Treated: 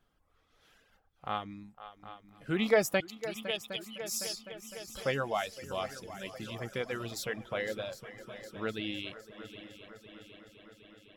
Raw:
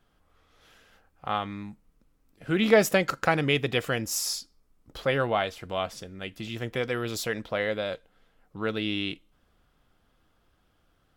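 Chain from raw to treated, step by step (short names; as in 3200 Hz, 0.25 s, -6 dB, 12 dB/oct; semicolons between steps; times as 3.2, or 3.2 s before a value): 3–4.28 steep high-pass 2700 Hz 48 dB/oct; multi-head echo 0.254 s, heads second and third, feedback 66%, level -13 dB; reverb removal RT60 1.1 s; gain -5.5 dB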